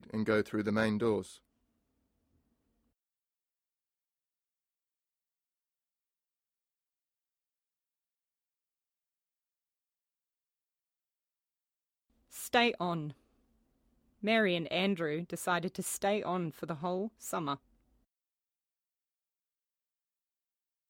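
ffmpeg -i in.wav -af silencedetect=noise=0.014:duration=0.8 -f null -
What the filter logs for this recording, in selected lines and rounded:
silence_start: 1.22
silence_end: 12.38 | silence_duration: 11.15
silence_start: 13.10
silence_end: 14.24 | silence_duration: 1.13
silence_start: 17.55
silence_end: 20.90 | silence_duration: 3.35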